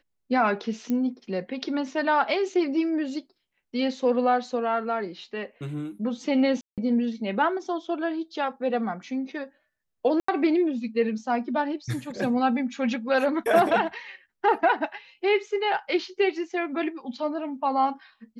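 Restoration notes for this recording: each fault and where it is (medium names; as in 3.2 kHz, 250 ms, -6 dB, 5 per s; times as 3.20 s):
0.90 s: pop -17 dBFS
6.61–6.78 s: dropout 167 ms
10.20–10.28 s: dropout 84 ms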